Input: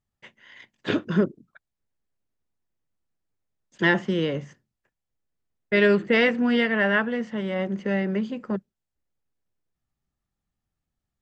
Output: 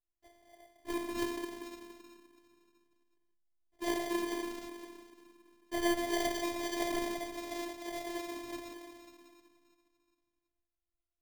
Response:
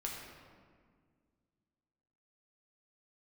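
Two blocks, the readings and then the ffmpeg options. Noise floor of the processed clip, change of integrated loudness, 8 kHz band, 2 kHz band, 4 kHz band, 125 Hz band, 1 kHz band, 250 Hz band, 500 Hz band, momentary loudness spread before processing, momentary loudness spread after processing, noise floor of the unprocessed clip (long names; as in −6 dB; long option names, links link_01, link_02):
below −85 dBFS, −13.0 dB, can't be measured, −17.0 dB, −8.5 dB, −26.5 dB, −6.0 dB, −12.0 dB, −13.0 dB, 10 LU, 18 LU, −85 dBFS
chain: -filter_complex "[1:a]atrim=start_sample=2205[link_01];[0:a][link_01]afir=irnorm=-1:irlink=0,acrusher=samples=33:mix=1:aa=0.000001,afftfilt=real='hypot(re,im)*cos(PI*b)':imag='0':win_size=512:overlap=0.75,volume=-8.5dB"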